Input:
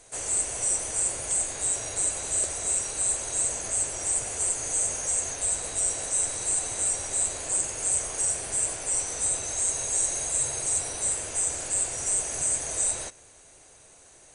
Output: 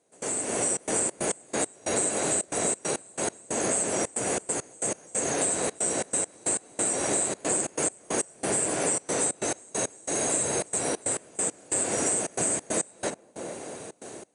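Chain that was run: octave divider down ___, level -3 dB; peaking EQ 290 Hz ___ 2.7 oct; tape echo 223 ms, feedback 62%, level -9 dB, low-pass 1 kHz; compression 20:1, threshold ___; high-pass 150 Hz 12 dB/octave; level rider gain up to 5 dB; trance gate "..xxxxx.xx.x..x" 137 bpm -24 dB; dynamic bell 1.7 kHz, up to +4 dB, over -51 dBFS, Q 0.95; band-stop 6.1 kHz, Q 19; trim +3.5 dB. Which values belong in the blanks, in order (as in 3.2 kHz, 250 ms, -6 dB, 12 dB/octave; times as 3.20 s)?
1 oct, +14 dB, -31 dBFS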